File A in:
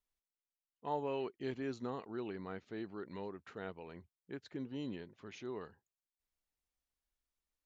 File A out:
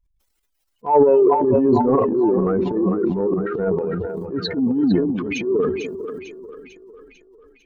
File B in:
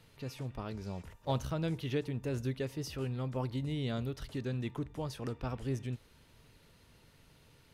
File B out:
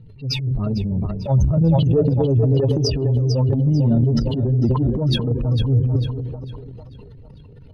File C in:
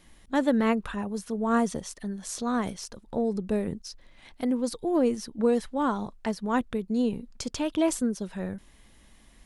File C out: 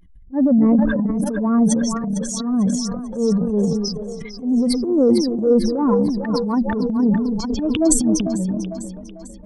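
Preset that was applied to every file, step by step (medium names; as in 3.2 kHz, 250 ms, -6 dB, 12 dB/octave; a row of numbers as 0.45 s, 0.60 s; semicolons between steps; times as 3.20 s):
spectral contrast enhancement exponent 2.7; dynamic bell 1.7 kHz, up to +5 dB, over -53 dBFS, Q 1.5; two-band feedback delay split 420 Hz, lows 246 ms, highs 448 ms, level -9 dB; transient shaper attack -11 dB, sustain +9 dB; normalise loudness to -19 LUFS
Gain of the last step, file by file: +25.0 dB, +19.5 dB, +10.0 dB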